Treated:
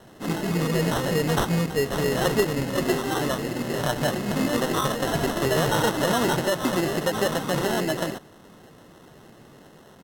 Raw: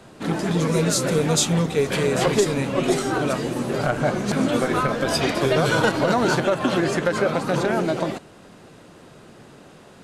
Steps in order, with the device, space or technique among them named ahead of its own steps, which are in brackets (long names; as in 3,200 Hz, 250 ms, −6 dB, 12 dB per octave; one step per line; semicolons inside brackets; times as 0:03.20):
crushed at another speed (tape speed factor 1.25×; decimation without filtering 15×; tape speed factor 0.8×)
level −3 dB